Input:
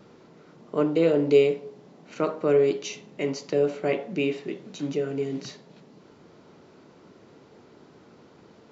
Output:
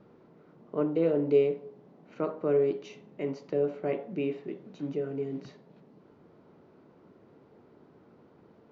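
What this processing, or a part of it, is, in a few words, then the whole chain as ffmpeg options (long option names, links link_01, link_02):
through cloth: -af "lowpass=6400,highshelf=frequency=2700:gain=-16.5,volume=-4.5dB"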